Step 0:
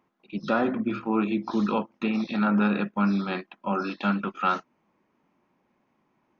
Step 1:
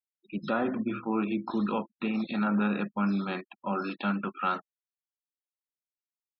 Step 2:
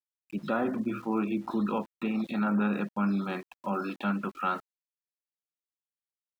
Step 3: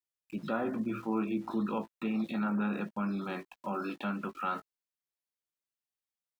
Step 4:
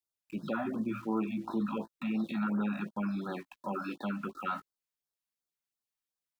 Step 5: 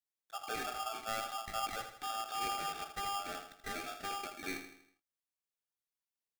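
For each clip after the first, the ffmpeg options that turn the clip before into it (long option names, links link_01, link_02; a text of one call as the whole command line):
ffmpeg -i in.wav -filter_complex "[0:a]afftfilt=real='re*gte(hypot(re,im),0.00794)':imag='im*gte(hypot(re,im),0.00794)':win_size=1024:overlap=0.75,asplit=2[link_01][link_02];[link_02]alimiter=level_in=0.5dB:limit=-24dB:level=0:latency=1:release=230,volume=-0.5dB,volume=-1.5dB[link_03];[link_01][link_03]amix=inputs=2:normalize=0,volume=-6.5dB" out.wav
ffmpeg -i in.wav -af "highshelf=frequency=3600:gain=-7.5,aeval=exprs='val(0)*gte(abs(val(0)),0.00282)':channel_layout=same" out.wav
ffmpeg -i in.wav -filter_complex "[0:a]asplit=2[link_01][link_02];[link_02]alimiter=level_in=4.5dB:limit=-24dB:level=0:latency=1,volume=-4.5dB,volume=-1.5dB[link_03];[link_01][link_03]amix=inputs=2:normalize=0,asplit=2[link_04][link_05];[link_05]adelay=18,volume=-10.5dB[link_06];[link_04][link_06]amix=inputs=2:normalize=0,volume=-7dB" out.wav
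ffmpeg -i in.wav -af "afftfilt=real='re*(1-between(b*sr/1024,370*pow(2600/370,0.5+0.5*sin(2*PI*2.8*pts/sr))/1.41,370*pow(2600/370,0.5+0.5*sin(2*PI*2.8*pts/sr))*1.41))':imag='im*(1-between(b*sr/1024,370*pow(2600/370,0.5+0.5*sin(2*PI*2.8*pts/sr))/1.41,370*pow(2600/370,0.5+0.5*sin(2*PI*2.8*pts/sr))*1.41))':win_size=1024:overlap=0.75" out.wav
ffmpeg -i in.wav -filter_complex "[0:a]asplit=2[link_01][link_02];[link_02]aecho=0:1:80|160|240|320|400:0.355|0.163|0.0751|0.0345|0.0159[link_03];[link_01][link_03]amix=inputs=2:normalize=0,aeval=exprs='val(0)*sgn(sin(2*PI*1000*n/s))':channel_layout=same,volume=-6dB" out.wav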